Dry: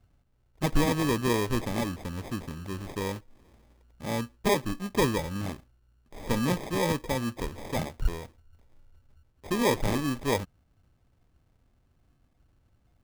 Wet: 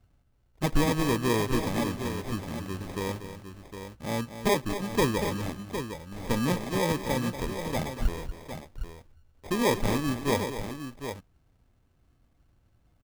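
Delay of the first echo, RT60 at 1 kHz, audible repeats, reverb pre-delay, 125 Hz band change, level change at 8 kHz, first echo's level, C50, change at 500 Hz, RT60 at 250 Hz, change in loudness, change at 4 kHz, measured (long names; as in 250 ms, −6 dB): 237 ms, no reverb audible, 2, no reverb audible, +1.0 dB, +1.0 dB, −11.0 dB, no reverb audible, +1.0 dB, no reverb audible, 0.0 dB, +1.0 dB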